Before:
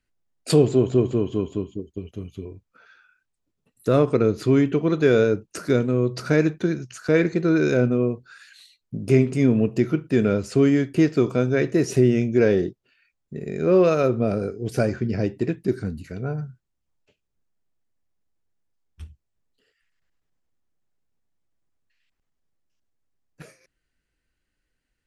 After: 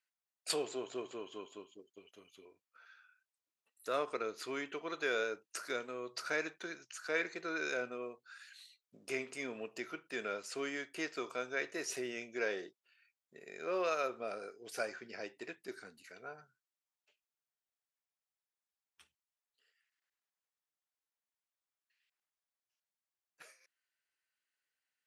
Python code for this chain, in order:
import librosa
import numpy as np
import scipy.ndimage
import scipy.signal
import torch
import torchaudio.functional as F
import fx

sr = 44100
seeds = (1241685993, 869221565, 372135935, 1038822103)

y = scipy.signal.sosfilt(scipy.signal.butter(2, 890.0, 'highpass', fs=sr, output='sos'), x)
y = y * 10.0 ** (-7.0 / 20.0)